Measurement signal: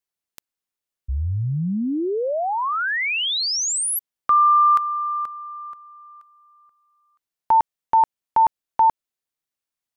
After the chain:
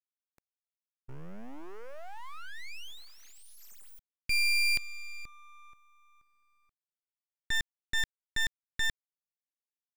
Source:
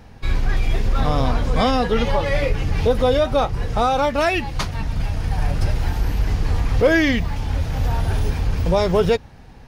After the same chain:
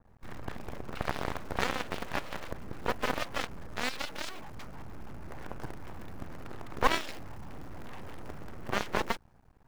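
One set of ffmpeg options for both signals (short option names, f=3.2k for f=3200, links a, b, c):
-af "acrusher=bits=6:dc=4:mix=0:aa=0.000001,highshelf=f=1.9k:t=q:w=1.5:g=-11.5,aeval=exprs='0.531*(cos(1*acos(clip(val(0)/0.531,-1,1)))-cos(1*PI/2))+0.237*(cos(3*acos(clip(val(0)/0.531,-1,1)))-cos(3*PI/2))':c=same,aeval=exprs='abs(val(0))':c=same,adynamicequalizer=threshold=0.0126:dfrequency=2900:dqfactor=0.7:tfrequency=2900:tqfactor=0.7:attack=5:release=100:ratio=0.375:range=2:mode=boostabove:tftype=highshelf,volume=-5.5dB"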